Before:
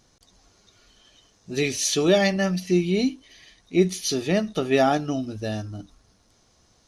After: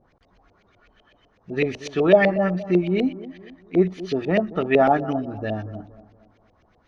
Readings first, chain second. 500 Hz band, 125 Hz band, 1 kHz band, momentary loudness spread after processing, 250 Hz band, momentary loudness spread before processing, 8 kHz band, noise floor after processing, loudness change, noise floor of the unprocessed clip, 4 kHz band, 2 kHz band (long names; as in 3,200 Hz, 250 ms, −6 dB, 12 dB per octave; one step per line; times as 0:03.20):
+3.0 dB, 0.0 dB, +4.0 dB, 15 LU, +1.0 dB, 11 LU, below −20 dB, −62 dBFS, +1.5 dB, −62 dBFS, −9.0 dB, +2.0 dB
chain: auto-filter low-pass saw up 8 Hz 510–2,800 Hz
bucket-brigade delay 233 ms, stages 2,048, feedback 41%, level −16 dB